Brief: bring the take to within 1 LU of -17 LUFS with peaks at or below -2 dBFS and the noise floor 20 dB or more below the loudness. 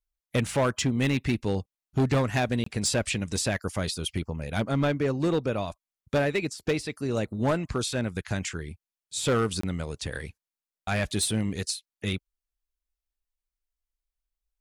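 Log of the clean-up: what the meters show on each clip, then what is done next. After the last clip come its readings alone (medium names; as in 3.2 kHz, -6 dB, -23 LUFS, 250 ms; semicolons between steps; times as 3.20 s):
clipped samples 1.3%; clipping level -19.0 dBFS; dropouts 2; longest dropout 24 ms; loudness -28.5 LUFS; peak level -19.0 dBFS; loudness target -17.0 LUFS
-> clip repair -19 dBFS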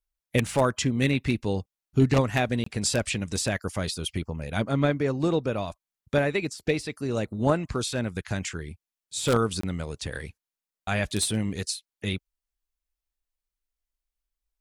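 clipped samples 0.0%; dropouts 2; longest dropout 24 ms
-> interpolate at 2.64/9.61 s, 24 ms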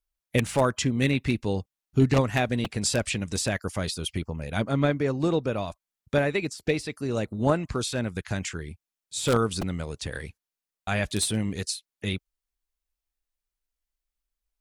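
dropouts 0; loudness -27.5 LUFS; peak level -10.0 dBFS; loudness target -17.0 LUFS
-> trim +10.5 dB; peak limiter -2 dBFS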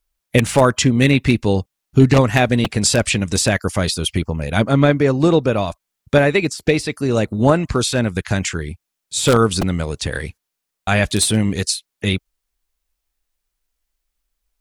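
loudness -17.5 LUFS; peak level -2.0 dBFS; noise floor -80 dBFS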